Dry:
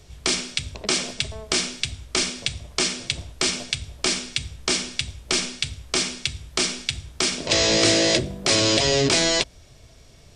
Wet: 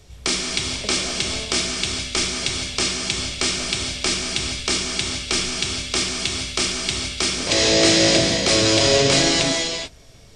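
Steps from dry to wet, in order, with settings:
reverb whose tail is shaped and stops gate 470 ms flat, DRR 0 dB

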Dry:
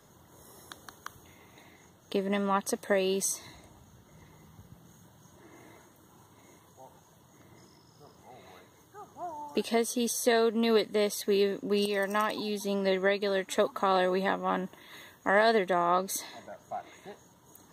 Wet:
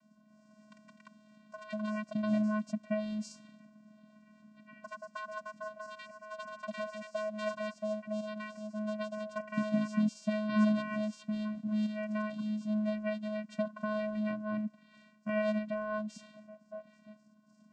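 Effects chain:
delay with pitch and tempo change per echo 288 ms, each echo +7 semitones, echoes 2
channel vocoder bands 8, square 213 Hz
level −5 dB

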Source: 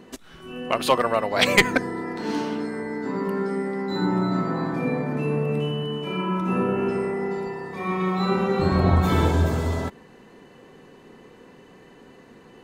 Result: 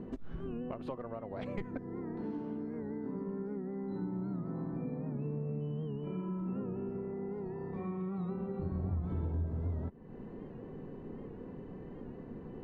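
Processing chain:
low-pass filter 1,100 Hz 6 dB per octave
low-shelf EQ 500 Hz +4.5 dB
downward compressor 6 to 1, threshold −38 dBFS, peak gain reduction 24.5 dB
spectral tilt −2.5 dB per octave
wow of a warped record 78 rpm, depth 100 cents
level −4 dB

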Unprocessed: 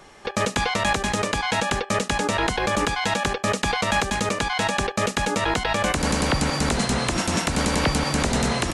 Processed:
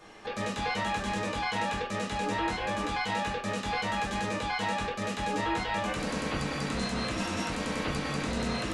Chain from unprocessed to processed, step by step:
brickwall limiter −21 dBFS, peak gain reduction 9.5 dB
convolution reverb, pre-delay 3 ms, DRR −6 dB
level −8.5 dB

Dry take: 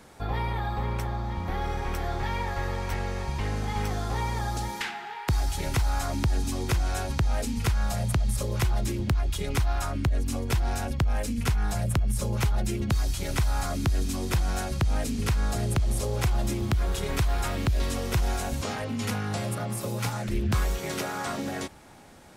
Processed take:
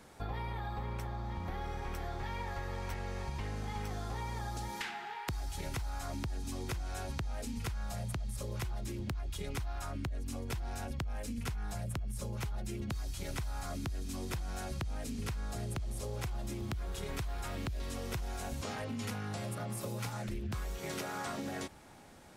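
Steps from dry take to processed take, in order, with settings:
downward compressor, threshold −30 dBFS, peak gain reduction 9.5 dB
level −5 dB

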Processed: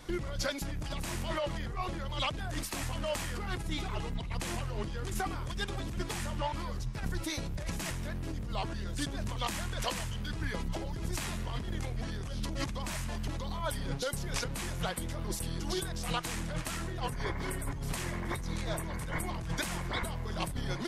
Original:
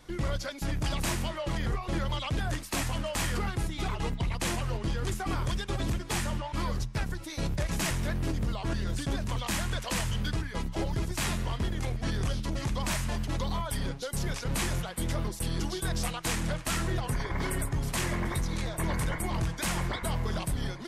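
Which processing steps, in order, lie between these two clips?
compressor whose output falls as the input rises −35 dBFS, ratio −1

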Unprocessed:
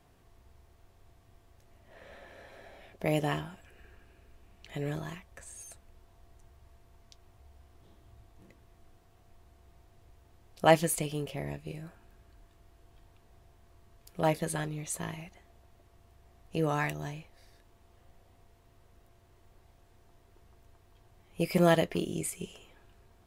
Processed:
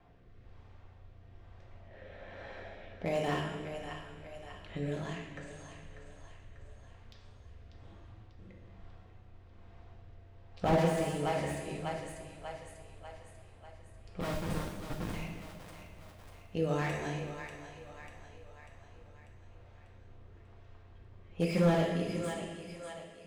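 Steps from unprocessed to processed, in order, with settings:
fade-out on the ending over 1.95 s
low-pass filter 9,500 Hz 24 dB per octave
mains-hum notches 50/100/150/200/250/300/350/400/450/500 Hz
in parallel at −1 dB: downward compressor 6 to 1, threshold −48 dBFS, peak gain reduction 28.5 dB
on the sum: rotating-speaker cabinet horn 1.1 Hz
low-pass that shuts in the quiet parts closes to 2,400 Hz, open at −32 dBFS
0:14.20–0:15.14: comparator with hysteresis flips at −34 dBFS
echo with a time of its own for lows and highs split 470 Hz, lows 267 ms, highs 593 ms, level −10.5 dB
convolution reverb, pre-delay 3 ms, DRR 1 dB
slew-rate limiting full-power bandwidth 41 Hz
level −1 dB

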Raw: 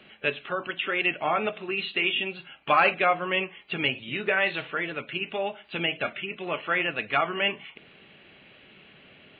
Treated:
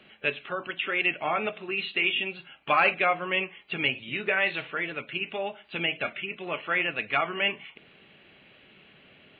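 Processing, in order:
dynamic equaliser 2,300 Hz, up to +4 dB, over −39 dBFS, Q 2.7
level −2.5 dB

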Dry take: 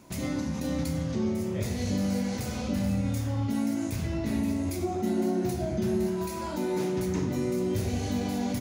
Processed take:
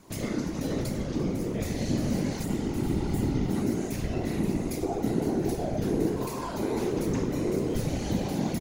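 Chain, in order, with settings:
healed spectral selection 0:02.47–0:03.44, 200–6,700 Hz after
random phases in short frames
echo with shifted repeats 343 ms, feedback 63%, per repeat +92 Hz, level −18 dB

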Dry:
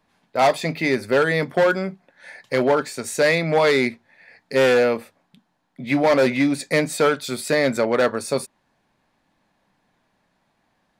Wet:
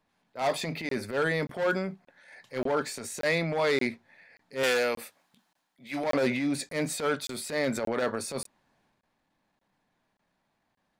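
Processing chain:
0:04.63–0:06.04: spectral tilt +3 dB per octave
0:06.69–0:07.69: surface crackle 31 per second −29 dBFS
transient designer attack −11 dB, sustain +5 dB
regular buffer underruns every 0.58 s, samples 1,024, zero, from 0:00.89
level −8 dB

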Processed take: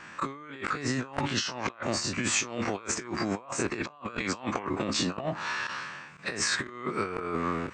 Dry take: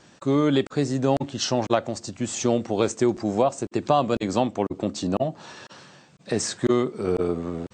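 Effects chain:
every bin's largest magnitude spread in time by 60 ms
flat-topped bell 1,600 Hz +13.5 dB
compressor whose output falls as the input rises −23 dBFS, ratio −0.5
dynamic equaliser 4,600 Hz, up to +6 dB, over −40 dBFS, Q 1.4
level −9 dB

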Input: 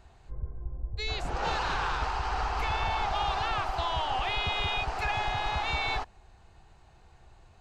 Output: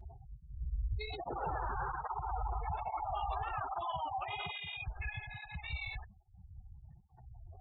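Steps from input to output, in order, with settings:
0:01.46–0:03.06: high-shelf EQ 2,200 Hz −7.5 dB
brickwall limiter −31 dBFS, peak gain reduction 11 dB
soft clipping −35.5 dBFS, distortion −16 dB
parametric band 4,600 Hz −5 dB 2.1 octaves
gate on every frequency bin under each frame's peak −15 dB strong
0:03.81–0:04.86: high-pass filter 110 Hz 12 dB per octave
0:04.51–0:07.12: gain on a spectral selection 240–1,600 Hz −17 dB
through-zero flanger with one copy inverted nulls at 1.2 Hz, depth 7.1 ms
level +8.5 dB

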